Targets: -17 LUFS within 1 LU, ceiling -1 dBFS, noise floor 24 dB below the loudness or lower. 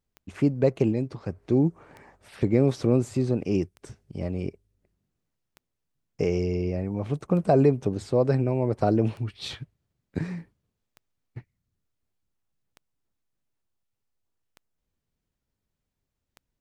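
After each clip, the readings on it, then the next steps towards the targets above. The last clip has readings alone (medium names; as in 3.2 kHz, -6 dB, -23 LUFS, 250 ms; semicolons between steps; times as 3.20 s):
clicks found 10; loudness -26.0 LUFS; peak level -8.5 dBFS; loudness target -17.0 LUFS
-> de-click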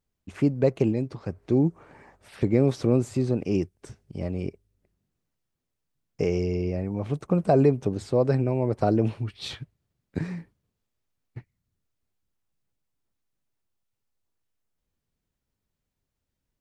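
clicks found 0; loudness -25.5 LUFS; peak level -8.5 dBFS; loudness target -17.0 LUFS
-> trim +8.5 dB; peak limiter -1 dBFS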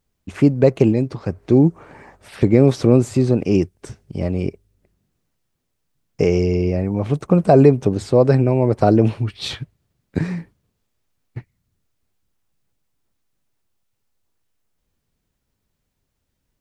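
loudness -17.5 LUFS; peak level -1.0 dBFS; noise floor -74 dBFS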